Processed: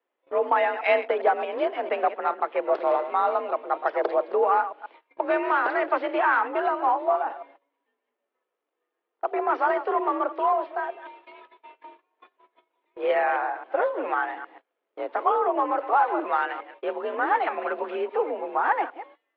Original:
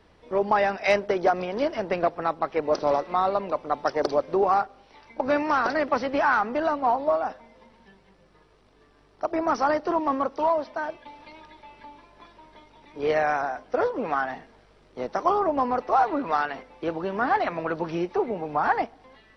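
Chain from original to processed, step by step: chunks repeated in reverse 135 ms, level -12 dB; mistuned SSB +52 Hz 260–3300 Hz; gate -47 dBFS, range -22 dB

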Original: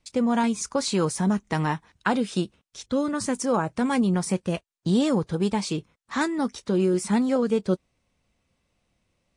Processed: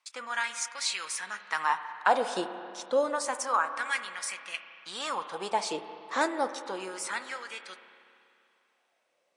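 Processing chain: LFO high-pass sine 0.29 Hz 510–2100 Hz; spring tank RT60 2.7 s, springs 31/48 ms, chirp 70 ms, DRR 9.5 dB; trim -2.5 dB

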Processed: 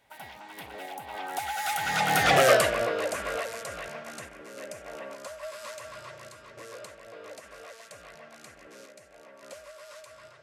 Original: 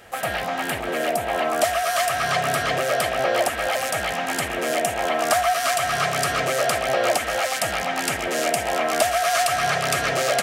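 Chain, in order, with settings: Doppler pass-by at 2.45 s, 53 m/s, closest 12 m; random-step tremolo; trim +4 dB

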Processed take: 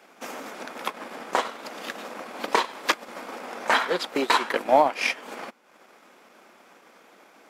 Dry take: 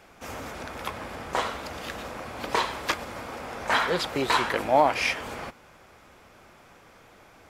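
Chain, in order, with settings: steep high-pass 200 Hz 36 dB/octave; transient shaper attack +5 dB, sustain -8 dB

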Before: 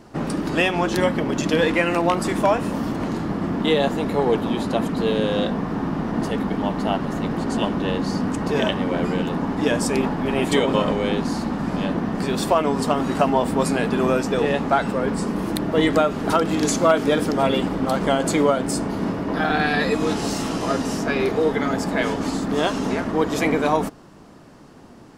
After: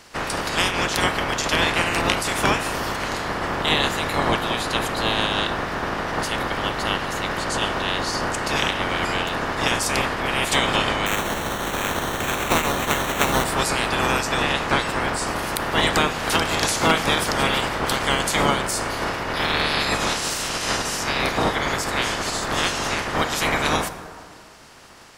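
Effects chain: spectral peaks clipped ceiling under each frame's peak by 25 dB; 11.06–13.44 s: sample-rate reducer 4.9 kHz, jitter 0%; plate-style reverb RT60 2.2 s, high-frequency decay 0.4×, DRR 11 dB; trim -1.5 dB

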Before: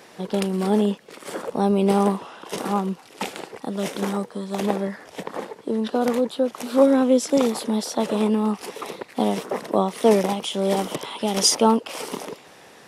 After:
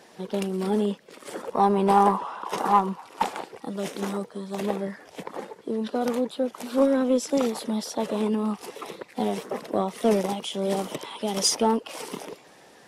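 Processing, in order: coarse spectral quantiser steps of 15 dB; 1.53–3.43 s: peaking EQ 1 kHz +14.5 dB 1 oct; in parallel at -6 dB: one-sided clip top -14 dBFS; on the sum: trim -7.5 dB

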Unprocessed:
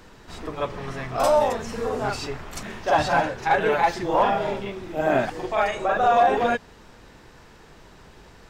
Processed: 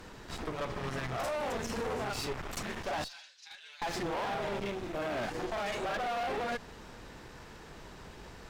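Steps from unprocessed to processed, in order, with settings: 3.04–3.82 s: ladder band-pass 5.1 kHz, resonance 40%; peak limiter -21 dBFS, peak gain reduction 11 dB; one-sided clip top -44 dBFS, bottom -27 dBFS

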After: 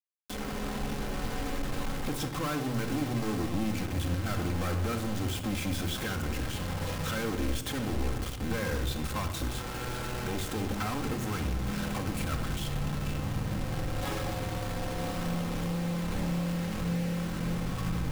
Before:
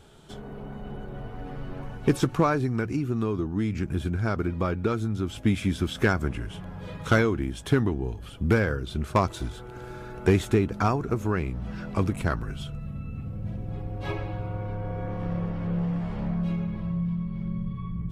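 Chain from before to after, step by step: compression 6:1, threshold -25 dBFS, peak gain reduction 9.5 dB; companded quantiser 2-bit; simulated room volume 3900 m³, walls furnished, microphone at 2.1 m; trim -7 dB

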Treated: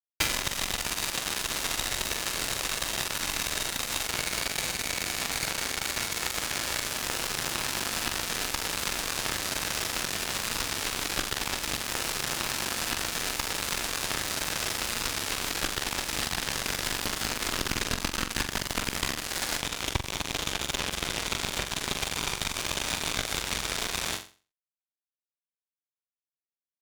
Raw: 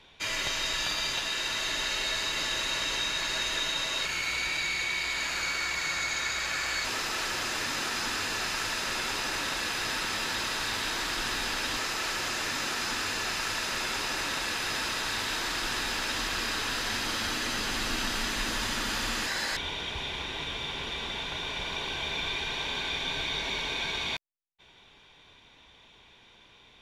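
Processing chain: bass shelf 230 Hz +11 dB; compression 16:1, threshold -39 dBFS, peak gain reduction 20 dB; fuzz box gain 42 dB, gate -37 dBFS; on a send: flutter echo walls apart 7.5 m, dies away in 0.36 s

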